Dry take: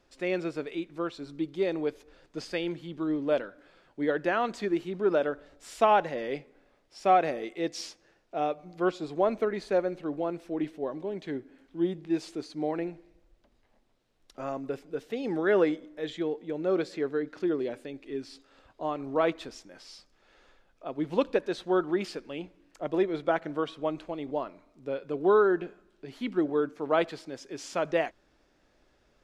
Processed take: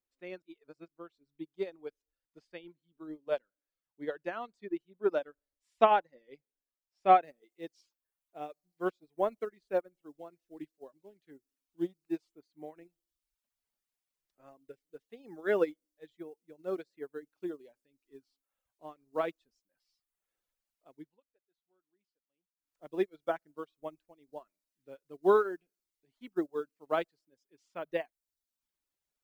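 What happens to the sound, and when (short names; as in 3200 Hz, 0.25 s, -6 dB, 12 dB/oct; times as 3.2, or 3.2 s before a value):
0.42–0.88 reverse
7.23 noise floor step -68 dB -58 dB
20.93–22.83 dip -21 dB, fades 0.28 s
whole clip: reverb removal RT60 1 s; upward expander 2.5:1, over -40 dBFS; gain +2 dB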